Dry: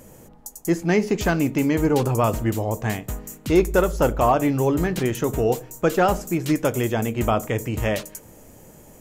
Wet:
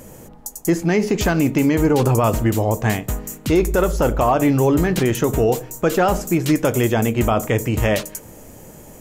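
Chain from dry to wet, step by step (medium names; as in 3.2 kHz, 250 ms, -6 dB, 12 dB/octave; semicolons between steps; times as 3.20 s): peak limiter -14 dBFS, peak gain reduction 7 dB; trim +6 dB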